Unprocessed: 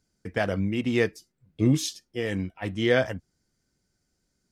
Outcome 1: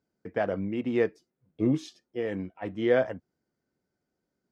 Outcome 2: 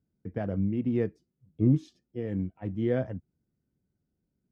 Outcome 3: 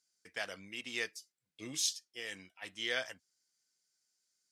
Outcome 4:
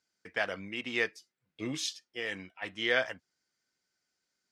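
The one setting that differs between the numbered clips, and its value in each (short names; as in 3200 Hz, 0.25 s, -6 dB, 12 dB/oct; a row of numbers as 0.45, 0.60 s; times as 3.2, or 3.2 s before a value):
band-pass, frequency: 540, 150, 6900, 2400 Hz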